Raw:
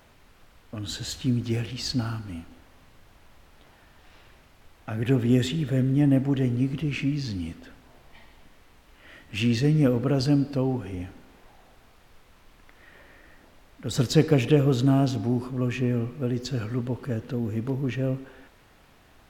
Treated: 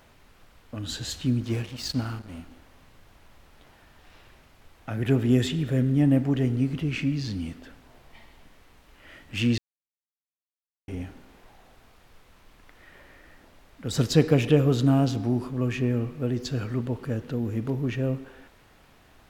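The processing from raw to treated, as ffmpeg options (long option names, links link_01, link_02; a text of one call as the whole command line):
ffmpeg -i in.wav -filter_complex "[0:a]asettb=1/sr,asplit=3[link_01][link_02][link_03];[link_01]atrim=end=1.454[link_04];[link_02]atrim=start=1.45:end=2.39,asetpts=PTS-STARTPTS,afade=type=in:duration=0.004:curve=qsin,afade=type=out:start_time=0.936:duration=0.004:curve=qsin,aeval=exprs='sgn(val(0))*max(abs(val(0))-0.00841,0)':channel_layout=same[link_05];[link_03]atrim=start=2.386[link_06];[link_04][link_05]acrossfade=duration=0.004:curve1=hsin:curve2=qsin[link_07];[link_07][link_06]acrossfade=duration=0.004:curve1=qsin:curve2=hsin,asplit=3[link_08][link_09][link_10];[link_08]atrim=end=9.58,asetpts=PTS-STARTPTS,afade=type=out:start_time=9.576:duration=0.004:curve=hsin[link_11];[link_09]atrim=start=9.58:end=10.88,asetpts=PTS-STARTPTS,volume=0[link_12];[link_10]atrim=start=10.88,asetpts=PTS-STARTPTS,afade=type=in:duration=0.004:curve=hsin[link_13];[link_11][link_12][link_13]concat=n=3:v=0:a=1" out.wav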